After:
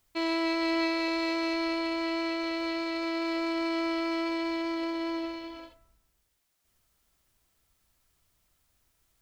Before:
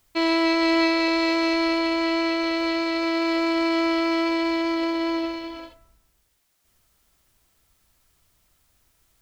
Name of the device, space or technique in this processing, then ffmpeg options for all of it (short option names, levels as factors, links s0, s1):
parallel distortion: -filter_complex "[0:a]asplit=2[s0][s1];[s1]asoftclip=type=hard:threshold=0.0376,volume=0.224[s2];[s0][s2]amix=inputs=2:normalize=0,volume=0.376"